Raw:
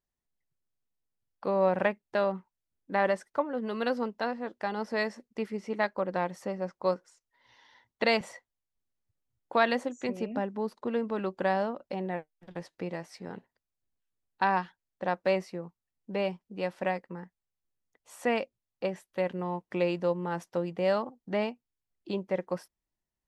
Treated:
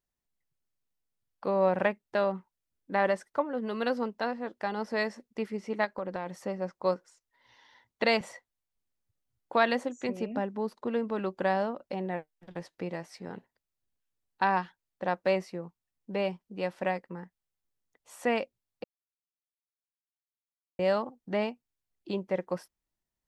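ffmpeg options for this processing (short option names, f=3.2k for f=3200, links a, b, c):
-filter_complex "[0:a]asplit=3[a][b][c];[a]afade=t=out:st=5.84:d=0.02[d];[b]acompressor=threshold=-30dB:ratio=4:attack=3.2:release=140:knee=1:detection=peak,afade=t=in:st=5.84:d=0.02,afade=t=out:st=6.26:d=0.02[e];[c]afade=t=in:st=6.26:d=0.02[f];[d][e][f]amix=inputs=3:normalize=0,asplit=3[g][h][i];[g]atrim=end=18.84,asetpts=PTS-STARTPTS,afade=t=out:st=18.836:d=0.004:c=hsin[j];[h]atrim=start=18.84:end=20.79,asetpts=PTS-STARTPTS,volume=0[k];[i]atrim=start=20.79,asetpts=PTS-STARTPTS,afade=t=in:d=0.004:c=hsin[l];[j][k][l]concat=n=3:v=0:a=1"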